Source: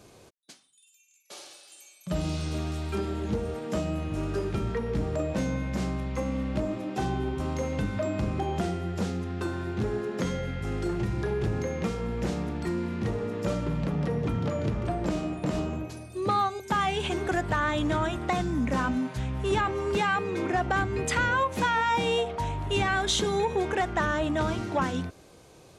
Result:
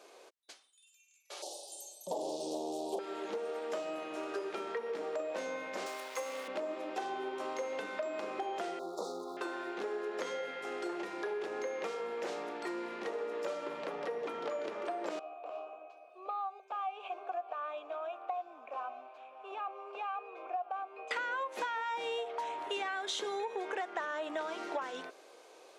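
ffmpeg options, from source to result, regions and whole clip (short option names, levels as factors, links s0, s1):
-filter_complex "[0:a]asettb=1/sr,asplit=3[s0][s1][s2];[s0]atrim=end=1.424[s3];[s1]atrim=start=1.42:end=2.99,asetpts=PTS-STARTPTS,afade=t=in:d=0.004:c=qsin,afade=t=out:st=1.566:d=0.004:c=qsin,equalizer=f=3500:t=o:w=1.5:g=-9,aeval=exprs='0.119*sin(PI/2*2.51*val(0)/0.119)':c=same,asuperstop=centerf=1700:order=8:qfactor=0.68[s4];[s2]atrim=start=2.986[s5];[s3][s4]acrossfade=d=0.004:c1=hsin:c2=qsin[s6];[s6][s5]acrossfade=d=0.004:c1=qsin:c2=hsin,asettb=1/sr,asplit=3[s7][s8][s9];[s7]atrim=end=5.864[s10];[s8]atrim=start=5.86:end=6.48,asetpts=PTS-STARTPTS,afade=t=in:d=0.004:c=qsin,afade=t=out:st=0.616:d=0.004:c=qsin,highpass=350,aemphasis=mode=production:type=75fm,aeval=exprs='val(0)*gte(abs(val(0)),0.00841)':c=same[s11];[s9]atrim=start=6.476[s12];[s10][s11]acrossfade=d=0.004:c1=hsin:c2=qsin[s13];[s13][s12]acrossfade=d=0.004:c1=qsin:c2=hsin,asettb=1/sr,asplit=3[s14][s15][s16];[s14]atrim=end=8.794[s17];[s15]atrim=start=8.79:end=9.37,asetpts=PTS-STARTPTS,afade=t=in:d=0.004:c=qsin,afade=t=out:st=0.576:d=0.004:c=qsin,aeval=exprs='val(0)+0.5*0.00631*sgn(val(0))':c=same,asuperstop=centerf=2200:order=20:qfactor=0.96[s18];[s16]atrim=start=9.366[s19];[s17][s18]acrossfade=d=0.004:c1=hsin:c2=qsin[s20];[s20][s19]acrossfade=d=0.004:c1=qsin:c2=hsin,asettb=1/sr,asplit=3[s21][s22][s23];[s21]atrim=end=15.194[s24];[s22]atrim=start=15.19:end=21.11,asetpts=PTS-STARTPTS,afade=t=in:d=0.004:c=qsin,afade=t=out:st=5.916:d=0.004:c=qsin,asplit=3[s25][s26][s27];[s25]bandpass=f=730:t=q:w=8,volume=1[s28];[s26]bandpass=f=1090:t=q:w=8,volume=0.501[s29];[s27]bandpass=f=2440:t=q:w=8,volume=0.355[s30];[s28][s29][s30]amix=inputs=3:normalize=0,aecho=1:1:601:0.1,atrim=end_sample=261072[s31];[s23]atrim=start=21.106[s32];[s24][s31]acrossfade=d=0.004:c1=hsin:c2=qsin[s33];[s33][s32]acrossfade=d=0.004:c1=qsin:c2=hsin,highpass=f=410:w=0.5412,highpass=f=410:w=1.3066,highshelf=f=6300:g=-9,acompressor=threshold=0.02:ratio=6"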